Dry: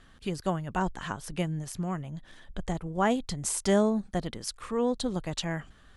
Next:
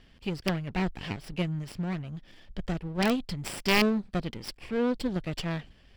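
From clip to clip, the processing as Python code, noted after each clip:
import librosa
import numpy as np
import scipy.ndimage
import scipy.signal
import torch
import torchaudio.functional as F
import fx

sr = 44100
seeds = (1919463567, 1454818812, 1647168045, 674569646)

y = fx.lower_of_two(x, sr, delay_ms=0.38)
y = (np.mod(10.0 ** (16.0 / 20.0) * y + 1.0, 2.0) - 1.0) / 10.0 ** (16.0 / 20.0)
y = fx.high_shelf_res(y, sr, hz=5700.0, db=-7.5, q=1.5)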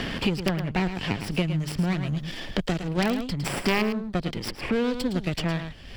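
y = x + 10.0 ** (-10.5 / 20.0) * np.pad(x, (int(108 * sr / 1000.0), 0))[:len(x)]
y = fx.band_squash(y, sr, depth_pct=100)
y = y * librosa.db_to_amplitude(3.0)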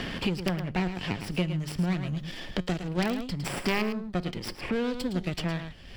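y = fx.comb_fb(x, sr, f0_hz=180.0, decay_s=0.32, harmonics='all', damping=0.0, mix_pct=40)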